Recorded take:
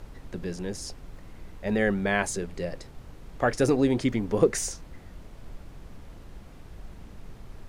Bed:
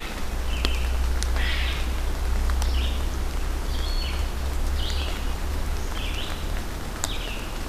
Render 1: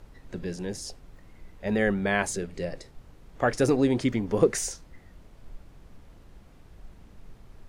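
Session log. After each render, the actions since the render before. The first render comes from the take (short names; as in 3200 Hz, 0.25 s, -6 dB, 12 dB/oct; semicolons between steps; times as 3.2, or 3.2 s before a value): noise print and reduce 6 dB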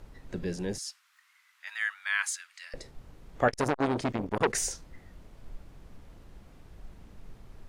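0.78–2.74 steep high-pass 1200 Hz; 3.48–4.55 core saturation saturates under 1800 Hz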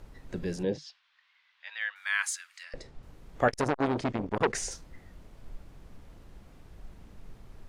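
0.63–1.96 speaker cabinet 110–4300 Hz, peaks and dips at 150 Hz +10 dB, 310 Hz +4 dB, 510 Hz +9 dB, 1300 Hz -8 dB, 2000 Hz -3 dB, 3400 Hz +3 dB; 2.63–3.03 air absorption 59 m; 3.61–4.72 air absorption 56 m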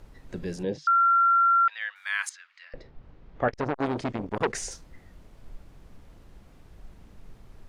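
0.87–1.68 bleep 1370 Hz -17 dBFS; 2.29–3.78 air absorption 220 m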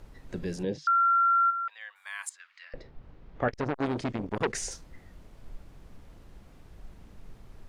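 dynamic EQ 820 Hz, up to -4 dB, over -36 dBFS, Q 0.7; 1.5–2.4 spectral gain 1200–6900 Hz -9 dB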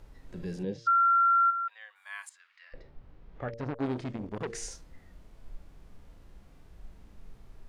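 de-hum 115.5 Hz, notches 5; harmonic-percussive split percussive -11 dB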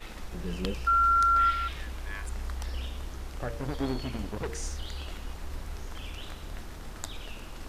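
add bed -11.5 dB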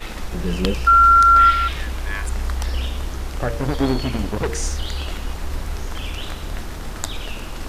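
gain +11.5 dB; limiter -3 dBFS, peak gain reduction 2 dB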